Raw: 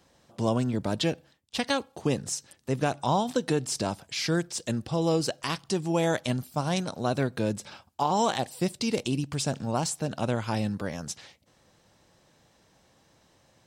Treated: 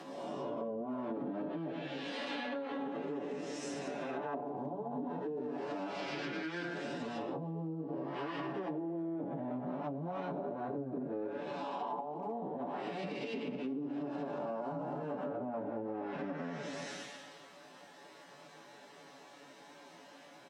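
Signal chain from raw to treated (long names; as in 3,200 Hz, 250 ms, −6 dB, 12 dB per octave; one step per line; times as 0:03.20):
spectrum smeared in time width 406 ms
mains-hum notches 60/120/180/240/300 Hz
time stretch by phase vocoder 1.5×
bass and treble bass −5 dB, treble −14 dB
comb filter 7 ms, depth 60%
treble cut that deepens with the level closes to 360 Hz, closed at −30.5 dBFS
high-pass filter 190 Hz 24 dB per octave
far-end echo of a speakerphone 310 ms, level −23 dB
downward compressor 4 to 1, threshold −52 dBFS, peak gain reduction 16 dB
high-shelf EQ 4,700 Hz +6 dB
notch filter 490 Hz, Q 12
level +13.5 dB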